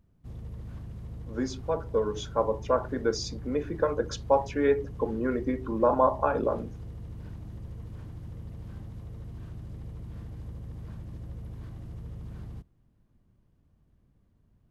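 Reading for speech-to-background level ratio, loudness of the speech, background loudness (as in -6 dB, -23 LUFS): 14.0 dB, -28.5 LUFS, -42.5 LUFS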